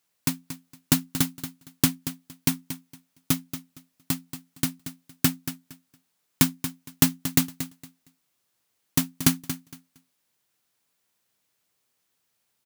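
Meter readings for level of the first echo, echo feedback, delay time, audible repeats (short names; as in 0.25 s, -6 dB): -11.5 dB, 20%, 0.231 s, 2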